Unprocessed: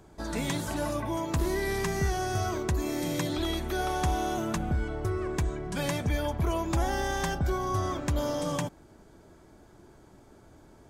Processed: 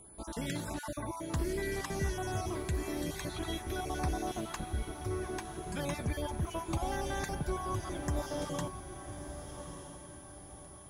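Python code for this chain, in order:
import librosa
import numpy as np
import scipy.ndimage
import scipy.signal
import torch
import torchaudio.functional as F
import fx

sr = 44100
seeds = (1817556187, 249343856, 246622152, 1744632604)

y = fx.spec_dropout(x, sr, seeds[0], share_pct=27)
y = fx.echo_diffused(y, sr, ms=1184, feedback_pct=42, wet_db=-9.0)
y = y + 10.0 ** (-48.0 / 20.0) * np.sin(2.0 * np.pi * 10000.0 * np.arange(len(y)) / sr)
y = y * librosa.db_to_amplitude(-5.5)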